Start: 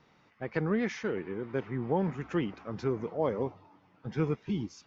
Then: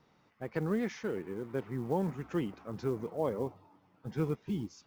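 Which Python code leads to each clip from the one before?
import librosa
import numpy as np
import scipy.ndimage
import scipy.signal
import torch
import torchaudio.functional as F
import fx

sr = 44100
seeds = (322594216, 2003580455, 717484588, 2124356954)

y = fx.peak_eq(x, sr, hz=2200.0, db=-4.5, octaves=1.4)
y = fx.quant_float(y, sr, bits=4)
y = y * librosa.db_to_amplitude(-2.5)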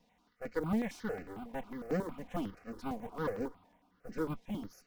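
y = fx.lower_of_two(x, sr, delay_ms=4.1)
y = fx.phaser_held(y, sr, hz=11.0, low_hz=360.0, high_hz=3400.0)
y = y * librosa.db_to_amplitude(1.0)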